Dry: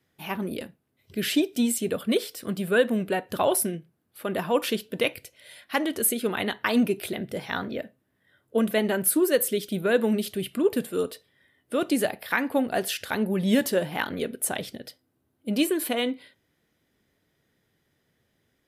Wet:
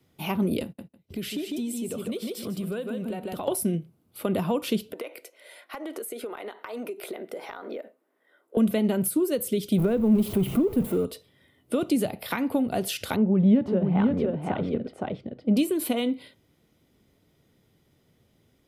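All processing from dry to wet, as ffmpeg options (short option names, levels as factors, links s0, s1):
-filter_complex "[0:a]asettb=1/sr,asplit=3[s0][s1][s2];[s0]atrim=end=0.634[s3];[s1]atrim=start=0.63:end=3.48,asetpts=PTS-STARTPTS,afade=t=in:d=0.004:c=qsin,afade=t=out:st=2.846:d=0.004:c=qsin,agate=range=0.1:threshold=0.00251:ratio=16:release=100:detection=peak,aecho=1:1:151|302|453:0.501|0.0802|0.0128,atrim=end_sample=125685,acompressor=threshold=0.0141:ratio=5:attack=3.2:release=140:knee=1:detection=peak[s4];[s2]atrim=start=3.476[s5];[s3][s4]acrossfade=d=0.004:c1=hsin:c2=qsin[s6];[s6][s5]acrossfade=d=0.004:c1=qsin:c2=hsin,asettb=1/sr,asplit=3[s7][s8][s9];[s7]atrim=end=4.924[s10];[s8]atrim=start=4.92:end=8.57,asetpts=PTS-STARTPTS,afade=t=in:d=0.004:c=qsin,afade=t=out:st=3.646:d=0.004:c=qsin,highpass=f=360:w=0.5412,highpass=f=360:w=1.3066,highshelf=f=2300:t=q:w=1.5:g=-6.5,acompressor=threshold=0.0141:ratio=10:attack=3.2:release=140:knee=1:detection=peak[s11];[s9]atrim=start=8.566[s12];[s10][s11]acrossfade=d=0.004:c1=hsin:c2=qsin[s13];[s13][s12]acrossfade=d=0.004:c1=qsin:c2=hsin,asettb=1/sr,asplit=3[s14][s15][s16];[s14]atrim=end=9.784[s17];[s15]atrim=start=9.78:end=11.05,asetpts=PTS-STARTPTS,afade=t=in:d=0.004:c=qsin,afade=t=out:st=1.266:d=0.004:c=qsin,aeval=exprs='val(0)+0.5*0.0299*sgn(val(0))':c=same,equalizer=f=5300:t=o:w=2.2:g=-13.5[s18];[s16]atrim=start=11.046[s19];[s17][s18]acrossfade=d=0.004:c1=hsin:c2=qsin[s20];[s20][s19]acrossfade=d=0.004:c1=qsin:c2=hsin,asettb=1/sr,asplit=3[s21][s22][s23];[s21]atrim=end=13.164[s24];[s22]atrim=start=13.16:end=15.57,asetpts=PTS-STARTPTS,afade=t=in:d=0.004:c=qsin,afade=t=out:st=2.406:d=0.004:c=qsin,lowpass=1600,aecho=1:1:515:0.596,atrim=end_sample=106281[s25];[s23]atrim=start=15.566[s26];[s24][s25]acrossfade=d=0.004:c1=hsin:c2=qsin[s27];[s27][s26]acrossfade=d=0.004:c1=qsin:c2=hsin,equalizer=f=1700:t=o:w=0.3:g=-11,acrossover=split=190[s28][s29];[s29]acompressor=threshold=0.0282:ratio=6[s30];[s28][s30]amix=inputs=2:normalize=0,lowshelf=f=410:g=5.5,volume=1.58"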